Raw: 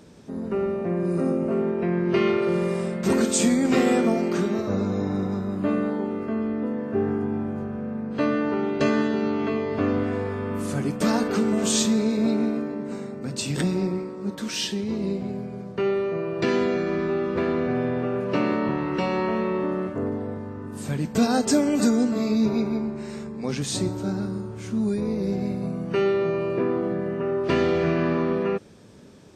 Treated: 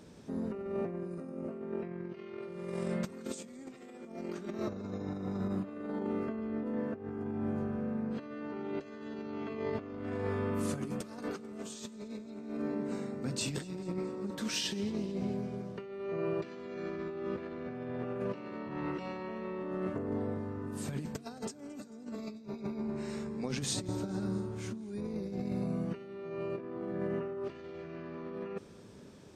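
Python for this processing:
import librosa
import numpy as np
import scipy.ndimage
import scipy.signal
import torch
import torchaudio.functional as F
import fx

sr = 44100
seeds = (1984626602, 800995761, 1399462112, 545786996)

y = fx.over_compress(x, sr, threshold_db=-28.0, ratio=-0.5)
y = fx.echo_feedback(y, sr, ms=221, feedback_pct=58, wet_db=-21.0)
y = F.gain(torch.from_numpy(y), -9.0).numpy()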